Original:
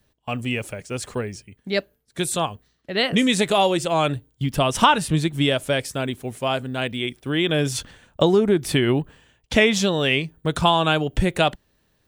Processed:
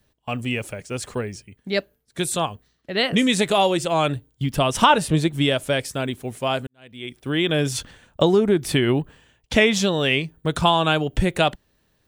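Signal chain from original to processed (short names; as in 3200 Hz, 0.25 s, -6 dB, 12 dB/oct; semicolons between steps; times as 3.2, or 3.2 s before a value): 4.9–5.31 bell 550 Hz +7 dB 1.1 oct; 6.67–7.24 fade in quadratic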